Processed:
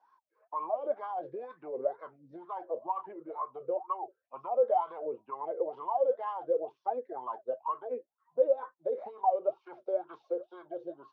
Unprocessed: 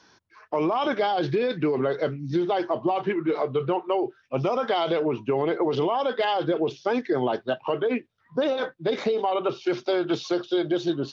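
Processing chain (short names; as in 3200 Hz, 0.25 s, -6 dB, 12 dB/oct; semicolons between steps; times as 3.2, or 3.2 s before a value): dynamic EQ 4400 Hz, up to -6 dB, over -48 dBFS, Q 0.79; wah 2.1 Hz 490–1100 Hz, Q 18; gain +5.5 dB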